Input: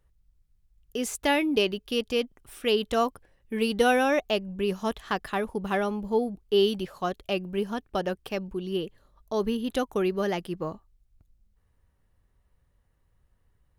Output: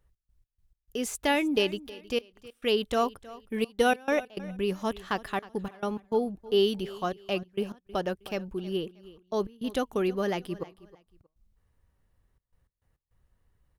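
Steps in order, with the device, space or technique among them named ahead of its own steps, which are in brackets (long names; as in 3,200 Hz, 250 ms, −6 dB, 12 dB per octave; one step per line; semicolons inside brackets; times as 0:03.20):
trance gate with a delay (gate pattern "x.x.x.xxxxxx" 103 BPM −24 dB; repeating echo 316 ms, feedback 26%, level −19 dB)
level −1.5 dB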